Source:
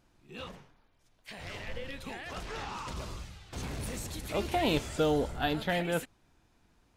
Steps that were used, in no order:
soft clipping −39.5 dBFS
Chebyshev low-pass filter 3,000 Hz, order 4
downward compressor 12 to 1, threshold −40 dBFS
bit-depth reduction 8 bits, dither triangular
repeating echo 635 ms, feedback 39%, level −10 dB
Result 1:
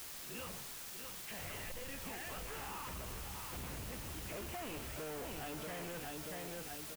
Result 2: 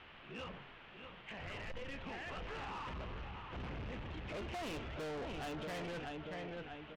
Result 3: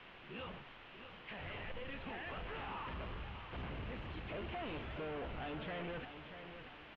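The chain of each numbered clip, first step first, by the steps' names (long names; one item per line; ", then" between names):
repeating echo, then soft clipping, then Chebyshev low-pass filter, then bit-depth reduction, then downward compressor
repeating echo, then bit-depth reduction, then Chebyshev low-pass filter, then soft clipping, then downward compressor
soft clipping, then bit-depth reduction, then Chebyshev low-pass filter, then downward compressor, then repeating echo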